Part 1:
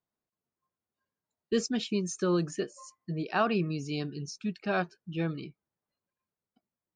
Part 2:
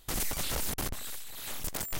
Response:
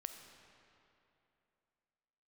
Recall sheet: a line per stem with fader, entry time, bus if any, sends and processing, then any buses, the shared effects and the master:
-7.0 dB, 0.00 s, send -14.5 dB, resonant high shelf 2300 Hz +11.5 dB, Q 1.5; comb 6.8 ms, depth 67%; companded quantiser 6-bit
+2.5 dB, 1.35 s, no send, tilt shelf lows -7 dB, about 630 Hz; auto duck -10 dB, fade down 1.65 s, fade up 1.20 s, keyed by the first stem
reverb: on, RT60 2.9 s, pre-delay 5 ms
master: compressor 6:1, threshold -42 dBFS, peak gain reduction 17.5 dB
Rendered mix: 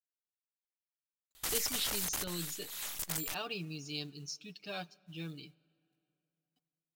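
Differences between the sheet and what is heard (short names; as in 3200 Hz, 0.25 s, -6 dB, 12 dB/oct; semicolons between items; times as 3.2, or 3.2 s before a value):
stem 1 -7.0 dB -> -15.5 dB; master: missing compressor 6:1, threshold -42 dBFS, peak gain reduction 17.5 dB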